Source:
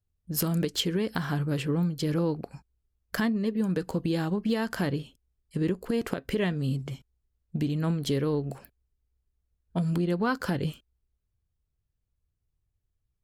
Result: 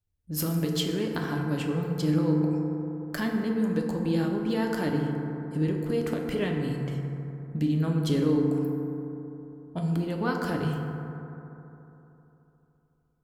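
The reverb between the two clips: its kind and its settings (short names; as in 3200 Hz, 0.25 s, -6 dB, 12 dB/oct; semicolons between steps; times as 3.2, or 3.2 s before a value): FDN reverb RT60 3.3 s, high-frequency decay 0.3×, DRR 0.5 dB; gain -3 dB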